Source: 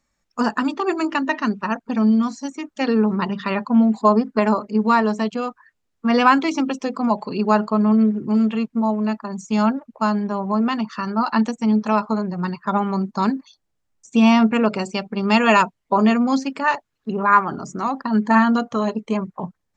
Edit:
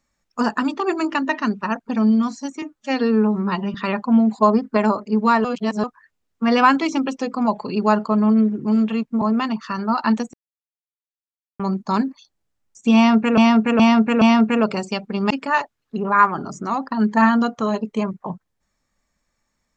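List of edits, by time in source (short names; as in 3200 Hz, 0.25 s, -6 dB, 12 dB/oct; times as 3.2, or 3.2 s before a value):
2.62–3.37 stretch 1.5×
5.07–5.46 reverse
8.84–10.5 cut
11.62–12.88 mute
14.24–14.66 loop, 4 plays
15.33–16.44 cut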